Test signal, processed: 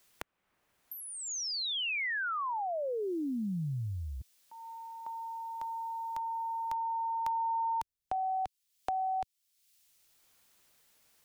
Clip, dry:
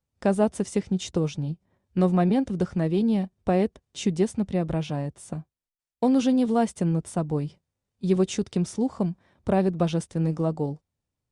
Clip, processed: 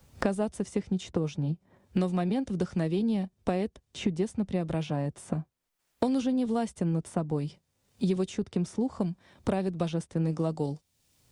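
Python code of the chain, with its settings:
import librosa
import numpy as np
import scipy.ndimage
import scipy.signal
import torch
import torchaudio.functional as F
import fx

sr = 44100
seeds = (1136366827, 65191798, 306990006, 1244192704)

y = fx.band_squash(x, sr, depth_pct=100)
y = y * 10.0 ** (-5.5 / 20.0)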